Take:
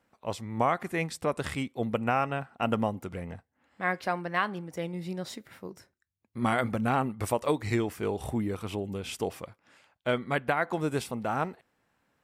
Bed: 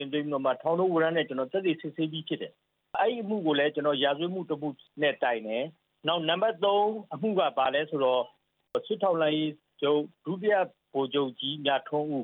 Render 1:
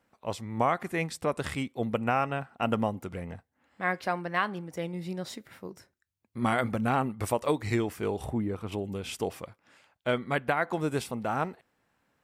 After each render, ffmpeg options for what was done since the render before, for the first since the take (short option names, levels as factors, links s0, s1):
-filter_complex "[0:a]asettb=1/sr,asplit=3[s0][s1][s2];[s0]atrim=end=8.254[s3];[s1]atrim=start=8.25:end=8.72,asetpts=PTS-STARTPTS,afade=t=in:d=0.004:c=qsin,afade=t=out:st=0.466:d=0.004:c=qsin,highshelf=f=2600:g=-11[s4];[s2]atrim=start=8.716[s5];[s3][s4]acrossfade=d=0.004:c1=hsin:c2=qsin[s6];[s6][s5]acrossfade=d=0.004:c1=qsin:c2=hsin"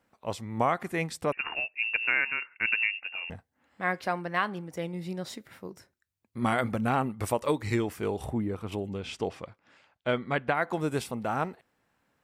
-filter_complex "[0:a]asettb=1/sr,asplit=3[s0][s1][s2];[s0]atrim=end=1.324[s3];[s1]atrim=start=1.32:end=3.3,asetpts=PTS-STARTPTS,afade=t=in:d=0.004:c=qsin,afade=t=out:st=1.976:d=0.004:c=qsin,lowpass=f=2500:t=q:w=0.5098,lowpass=f=2500:t=q:w=0.6013,lowpass=f=2500:t=q:w=0.9,lowpass=f=2500:t=q:w=2.563,afreqshift=-2900[s4];[s2]atrim=start=3.296[s5];[s3][s4]acrossfade=d=0.004:c1=hsin:c2=qsin[s6];[s6][s5]acrossfade=d=0.004:c1=qsin:c2=hsin,asettb=1/sr,asplit=3[s7][s8][s9];[s7]atrim=end=7.414[s10];[s8]atrim=start=7.41:end=7.82,asetpts=PTS-STARTPTS,afade=t=in:d=0.004:c=qsin,afade=t=out:st=0.406:d=0.004:c=qsin,asuperstop=centerf=710:order=4:qfactor=7.6[s11];[s9]atrim=start=7.816[s12];[s10][s11]acrossfade=d=0.004:c1=hsin:c2=qsin[s13];[s13][s12]acrossfade=d=0.004:c1=qsin:c2=hsin,asettb=1/sr,asplit=3[s14][s15][s16];[s14]atrim=end=8.894[s17];[s15]atrim=start=8.89:end=10.55,asetpts=PTS-STARTPTS,afade=t=in:d=0.004:c=qsin,afade=t=out:st=1.656:d=0.004:c=qsin,lowpass=5500[s18];[s16]atrim=start=10.546[s19];[s17][s18]acrossfade=d=0.004:c1=hsin:c2=qsin[s20];[s20][s19]acrossfade=d=0.004:c1=qsin:c2=hsin"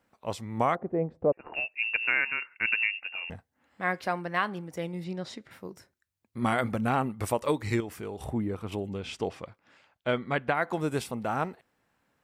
-filter_complex "[0:a]asettb=1/sr,asplit=3[s0][s1][s2];[s0]atrim=end=0.754[s3];[s1]atrim=start=0.75:end=1.54,asetpts=PTS-STARTPTS,afade=t=in:d=0.004:c=qsin,afade=t=out:st=0.786:d=0.004:c=qsin,lowpass=f=560:t=q:w=2[s4];[s2]atrim=start=1.536[s5];[s3][s4]acrossfade=d=0.004:c1=hsin:c2=qsin[s6];[s6][s5]acrossfade=d=0.004:c1=qsin:c2=hsin,asettb=1/sr,asplit=3[s7][s8][s9];[s7]atrim=end=5.044[s10];[s8]atrim=start=5.04:end=5.51,asetpts=PTS-STARTPTS,afade=t=in:d=0.004:c=qsin,afade=t=out:st=0.466:d=0.004:c=qsin,lowpass=5900[s11];[s9]atrim=start=5.506[s12];[s10][s11]acrossfade=d=0.004:c1=hsin:c2=qsin[s13];[s13][s12]acrossfade=d=0.004:c1=qsin:c2=hsin,asettb=1/sr,asplit=3[s14][s15][s16];[s14]atrim=end=7.804[s17];[s15]atrim=start=7.8:end=8.26,asetpts=PTS-STARTPTS,afade=t=in:d=0.004:c=qsin,afade=t=out:st=0.456:d=0.004:c=qsin,acompressor=threshold=0.0158:ratio=2.5:attack=3.2:release=140:knee=1:detection=peak[s18];[s16]atrim=start=8.256[s19];[s17][s18]acrossfade=d=0.004:c1=hsin:c2=qsin[s20];[s20][s19]acrossfade=d=0.004:c1=qsin:c2=hsin"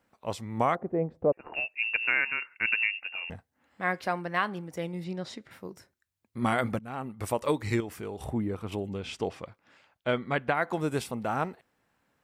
-filter_complex "[0:a]asplit=2[s0][s1];[s0]atrim=end=6.79,asetpts=PTS-STARTPTS,afade=t=out:st=6.786:d=0.004:c=hsin:silence=0.0707946[s2];[s1]atrim=start=6.79,asetpts=PTS-STARTPTS,afade=t=in:d=0.64:silence=0.0707946[s3];[s2][s3]concat=n=2:v=0:a=1"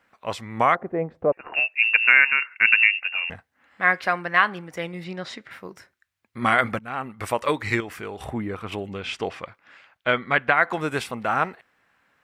-af "equalizer=f=1800:w=0.52:g=12,bandreject=f=890:w=21"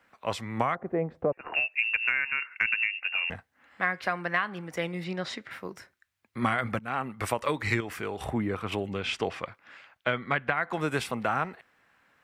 -filter_complex "[0:a]acrossover=split=170[s0][s1];[s1]acompressor=threshold=0.0631:ratio=6[s2];[s0][s2]amix=inputs=2:normalize=0"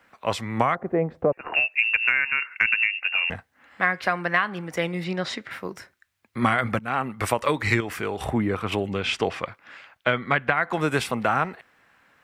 -af "volume=1.88"